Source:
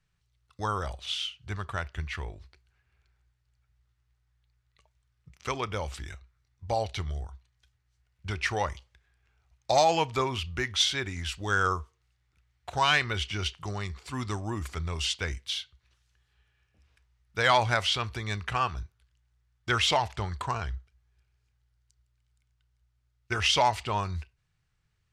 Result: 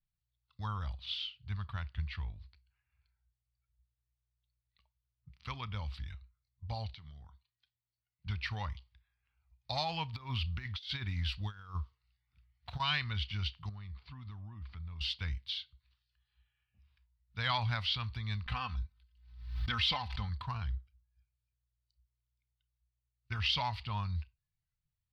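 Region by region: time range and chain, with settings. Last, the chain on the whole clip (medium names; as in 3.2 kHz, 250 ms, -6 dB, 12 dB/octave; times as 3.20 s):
6.94–8.27 s: band-pass 140–7600 Hz + compression 12:1, threshold -42 dBFS
10.13–12.80 s: block-companded coder 7-bit + compressor with a negative ratio -32 dBFS, ratio -0.5
13.69–15.01 s: compression, threshold -38 dBFS + distance through air 200 m
18.46–20.29 s: comb 3.9 ms, depth 59% + swell ahead of each attack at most 74 dB/s
whole clip: FFT filter 110 Hz 0 dB, 220 Hz -3 dB, 360 Hz -19 dB, 650 Hz -13 dB, 1 kHz -4 dB, 1.5 kHz -7 dB, 4.5 kHz +2 dB, 6.9 kHz -26 dB, 13 kHz -14 dB; spectral noise reduction 12 dB; bass shelf 210 Hz +4.5 dB; trim -5.5 dB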